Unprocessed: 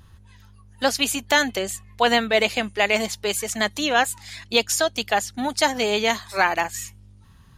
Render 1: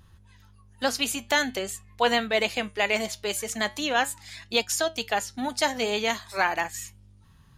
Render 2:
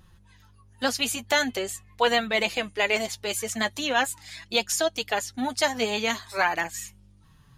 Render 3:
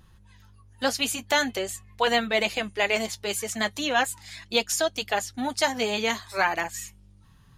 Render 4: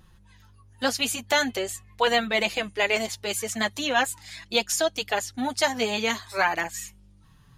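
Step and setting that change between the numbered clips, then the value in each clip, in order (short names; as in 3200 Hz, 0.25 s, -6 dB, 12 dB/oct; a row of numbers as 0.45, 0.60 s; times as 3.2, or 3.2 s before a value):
flange, regen: +82, +29, -44, -11%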